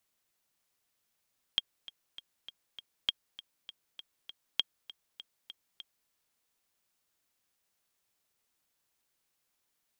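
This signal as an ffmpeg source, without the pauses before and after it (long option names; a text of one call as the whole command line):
ffmpeg -f lavfi -i "aevalsrc='pow(10,(-13.5-18*gte(mod(t,5*60/199),60/199))/20)*sin(2*PI*3240*mod(t,60/199))*exp(-6.91*mod(t,60/199)/0.03)':duration=4.52:sample_rate=44100" out.wav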